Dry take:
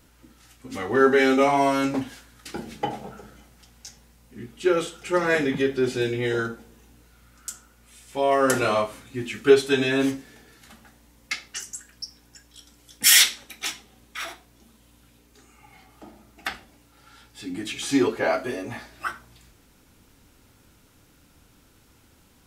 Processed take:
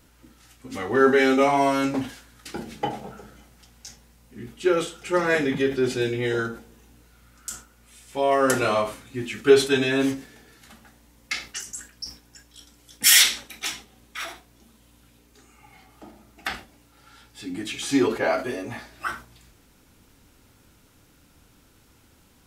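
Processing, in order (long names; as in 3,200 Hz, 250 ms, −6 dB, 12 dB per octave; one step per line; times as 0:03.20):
level that may fall only so fast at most 150 dB per second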